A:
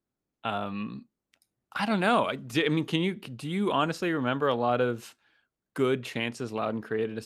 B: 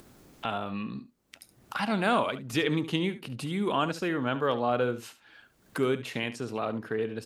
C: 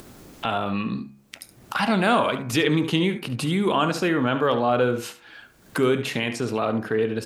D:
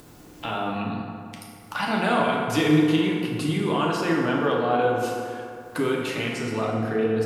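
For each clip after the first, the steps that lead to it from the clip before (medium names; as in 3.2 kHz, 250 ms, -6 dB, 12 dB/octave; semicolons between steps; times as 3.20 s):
upward compressor, threshold -28 dBFS; delay 71 ms -14 dB; trim -1.5 dB
de-hum 69.19 Hz, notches 36; in parallel at +1.5 dB: peak limiter -25.5 dBFS, peak gain reduction 11 dB; on the sum: trim +3 dB
FDN reverb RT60 2.5 s, low-frequency decay 1×, high-frequency decay 0.5×, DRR -2.5 dB; trim -5.5 dB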